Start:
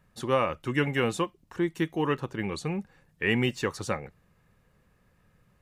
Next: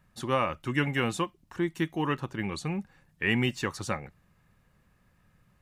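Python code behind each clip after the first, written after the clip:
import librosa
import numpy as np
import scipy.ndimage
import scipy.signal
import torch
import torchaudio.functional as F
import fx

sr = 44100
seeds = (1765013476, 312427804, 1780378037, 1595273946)

y = fx.peak_eq(x, sr, hz=460.0, db=-6.5, octaves=0.52)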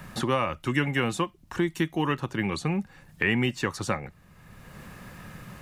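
y = fx.band_squash(x, sr, depth_pct=70)
y = y * librosa.db_to_amplitude(2.5)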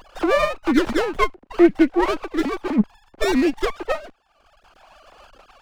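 y = fx.sine_speech(x, sr)
y = fx.running_max(y, sr, window=17)
y = y * librosa.db_to_amplitude(9.0)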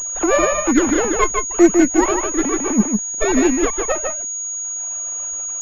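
y = x + 10.0 ** (-4.5 / 20.0) * np.pad(x, (int(152 * sr / 1000.0), 0))[:len(x)]
y = fx.pwm(y, sr, carrier_hz=6700.0)
y = y * librosa.db_to_amplitude(2.0)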